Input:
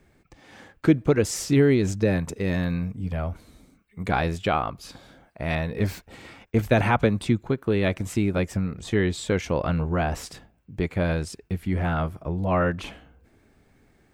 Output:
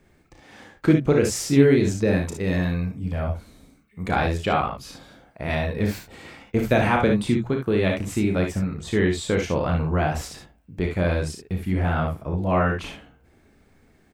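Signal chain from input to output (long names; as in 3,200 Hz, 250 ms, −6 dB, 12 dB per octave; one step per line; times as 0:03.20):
mains-hum notches 60/120 Hz
on a send: ambience of single reflections 33 ms −6.5 dB, 58 ms −6.5 dB, 72 ms −8.5 dB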